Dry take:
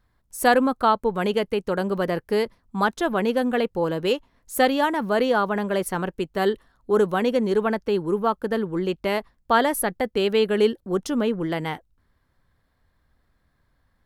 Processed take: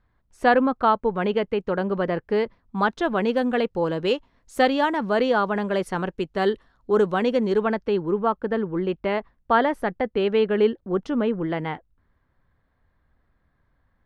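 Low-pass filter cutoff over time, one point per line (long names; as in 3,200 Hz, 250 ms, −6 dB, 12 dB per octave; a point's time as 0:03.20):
0:02.44 2,900 Hz
0:03.37 5,500 Hz
0:07.49 5,500 Hz
0:08.32 2,500 Hz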